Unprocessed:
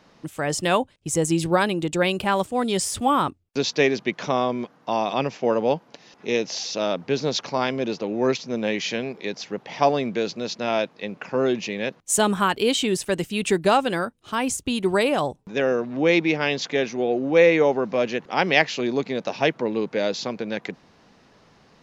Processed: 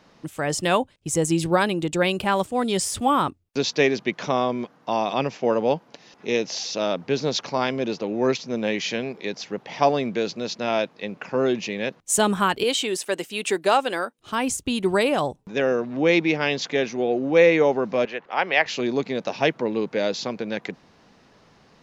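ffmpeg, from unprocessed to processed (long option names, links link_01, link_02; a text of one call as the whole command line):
ffmpeg -i in.wav -filter_complex "[0:a]asettb=1/sr,asplit=3[link_01][link_02][link_03];[link_01]atrim=end=12.634[link_04];[link_02]atrim=start=12.63:end=14.19,asetpts=PTS-STARTPTS,afade=type=in:duration=0.004:curve=qsin,afade=type=out:start_time=1.556:duration=0.004:curve=qsin,highpass=360[link_05];[link_03]atrim=start=14.186[link_06];[link_04][link_05]acrossfade=duration=0.004:curve1=hsin:curve2=qsin[link_07];[link_07][link_06]acrossfade=duration=0.004:curve1=qsin:curve2=hsin,asettb=1/sr,asplit=3[link_08][link_09][link_10];[link_08]atrim=end=18.054[link_11];[link_09]atrim=start=18.05:end=18.66,asetpts=PTS-STARTPTS,afade=type=in:duration=0.004:curve=qsin,afade=type=out:start_time=0.606:duration=0.004:curve=qsin,acrossover=split=480 3300:gain=0.2 1 0.158[link_12][link_13][link_14];[link_12][link_13][link_14]amix=inputs=3:normalize=0[link_15];[link_10]atrim=start=18.656[link_16];[link_11][link_15]acrossfade=duration=0.004:curve1=hsin:curve2=qsin[link_17];[link_17][link_16]acrossfade=duration=0.004:curve1=qsin:curve2=hsin" out.wav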